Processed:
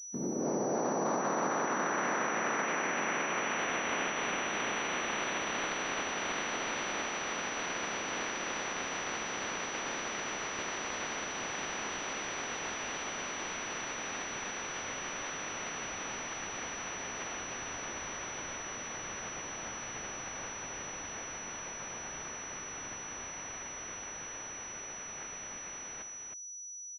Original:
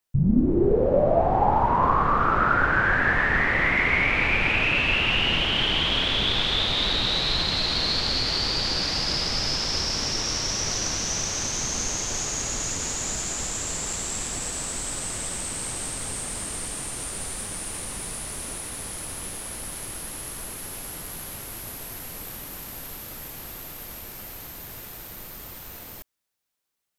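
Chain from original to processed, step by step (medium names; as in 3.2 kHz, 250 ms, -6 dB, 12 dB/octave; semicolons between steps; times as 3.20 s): spectral peaks clipped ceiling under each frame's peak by 26 dB; peak limiter -18 dBFS, peak gain reduction 10 dB; high-pass 190 Hz 24 dB/octave; on a send: delay 314 ms -5.5 dB; on the sum: class-D stage that switches slowly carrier 5.9 kHz; trim -6 dB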